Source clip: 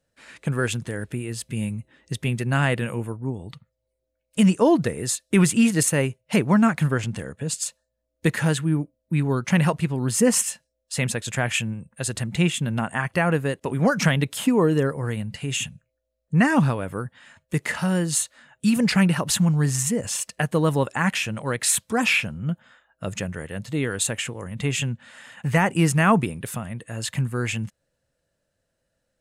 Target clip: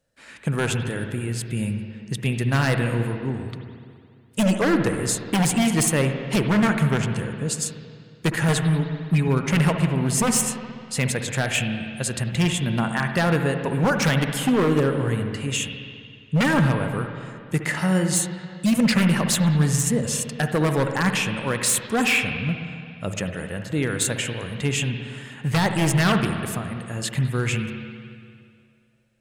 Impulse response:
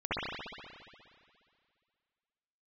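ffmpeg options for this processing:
-filter_complex "[0:a]asettb=1/sr,asplit=3[link_01][link_02][link_03];[link_01]atrim=end=8.484[link_04];[link_02]atrim=start=8.48:end=9.28,asetpts=PTS-STARTPTS,afade=type=in:duration=0.004:curve=qsin,afade=type=out:start_time=0.796:duration=0.004:curve=qsin,aecho=1:1:4.8:0.82,atrim=end_sample=35280[link_05];[link_03]atrim=start=9.276[link_06];[link_04][link_05]acrossfade=duration=0.004:curve1=hsin:curve2=qsin[link_07];[link_07][link_06]acrossfade=duration=0.004:curve1=qsin:curve2=hsin,aeval=exprs='0.178*(abs(mod(val(0)/0.178+3,4)-2)-1)':channel_layout=same,asplit=2[link_08][link_09];[1:a]atrim=start_sample=2205[link_10];[link_09][link_10]afir=irnorm=-1:irlink=0,volume=-14.5dB[link_11];[link_08][link_11]amix=inputs=2:normalize=0"

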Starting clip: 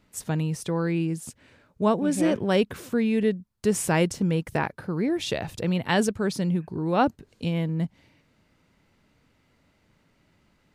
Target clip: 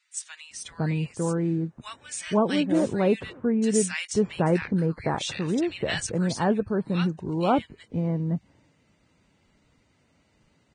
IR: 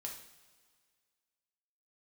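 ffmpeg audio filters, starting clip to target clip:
-filter_complex "[0:a]acrossover=split=1500[link_01][link_02];[link_01]adelay=510[link_03];[link_03][link_02]amix=inputs=2:normalize=0" -ar 22050 -c:a libvorbis -b:a 16k

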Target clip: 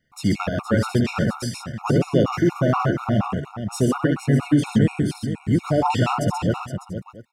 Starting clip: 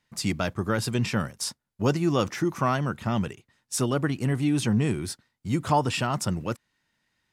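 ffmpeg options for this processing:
ffmpeg -i in.wav -af "acontrast=85,equalizer=frequency=9200:width_type=o:width=2.9:gain=-9.5,aecho=1:1:71|130|468|599|600|686:0.501|0.596|0.355|0.178|0.119|0.126,afftfilt=real='re*gt(sin(2*PI*4.2*pts/sr)*(1-2*mod(floor(b*sr/1024/720),2)),0)':imag='im*gt(sin(2*PI*4.2*pts/sr)*(1-2*mod(floor(b*sr/1024/720),2)),0)':win_size=1024:overlap=0.75" out.wav

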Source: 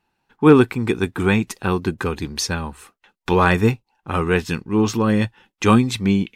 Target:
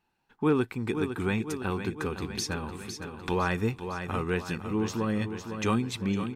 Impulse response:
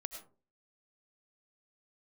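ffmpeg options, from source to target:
-filter_complex "[0:a]asplit=2[link_01][link_02];[link_02]aecho=0:1:506|1012|1518|2024|2530|3036:0.282|0.155|0.0853|0.0469|0.0258|0.0142[link_03];[link_01][link_03]amix=inputs=2:normalize=0,acompressor=threshold=-31dB:ratio=1.5,volume=-5dB"

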